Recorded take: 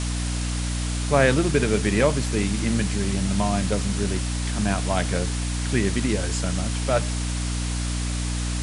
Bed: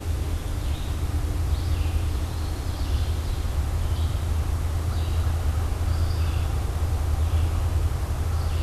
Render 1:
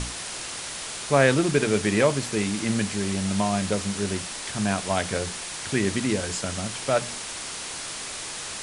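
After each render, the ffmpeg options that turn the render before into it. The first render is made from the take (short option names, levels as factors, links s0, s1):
-af "bandreject=f=60:t=h:w=6,bandreject=f=120:t=h:w=6,bandreject=f=180:t=h:w=6,bandreject=f=240:t=h:w=6,bandreject=f=300:t=h:w=6"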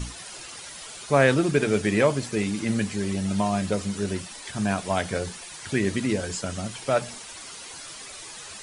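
-af "afftdn=nr=11:nf=-35"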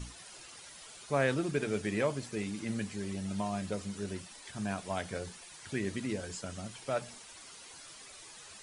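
-af "volume=0.299"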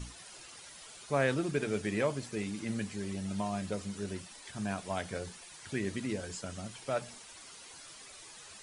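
-af anull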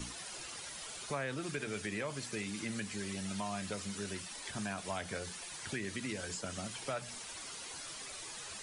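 -filter_complex "[0:a]asplit=2[s0][s1];[s1]alimiter=level_in=1.19:limit=0.0631:level=0:latency=1:release=32,volume=0.841,volume=0.841[s2];[s0][s2]amix=inputs=2:normalize=0,acrossover=split=150|1000[s3][s4][s5];[s3]acompressor=threshold=0.00282:ratio=4[s6];[s4]acompressor=threshold=0.00794:ratio=4[s7];[s5]acompressor=threshold=0.01:ratio=4[s8];[s6][s7][s8]amix=inputs=3:normalize=0"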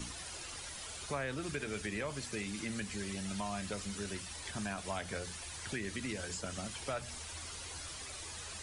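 -filter_complex "[1:a]volume=0.0299[s0];[0:a][s0]amix=inputs=2:normalize=0"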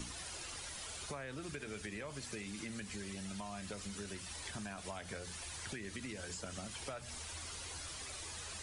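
-af "acompressor=threshold=0.00891:ratio=6"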